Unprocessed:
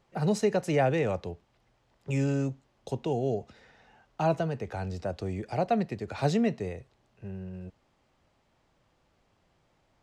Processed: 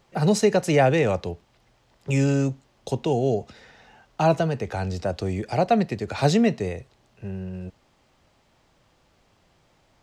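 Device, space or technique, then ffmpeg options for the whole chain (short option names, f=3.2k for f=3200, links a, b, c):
presence and air boost: -af "equalizer=f=4.8k:t=o:w=1.9:g=3,highshelf=f=9k:g=4,volume=6.5dB"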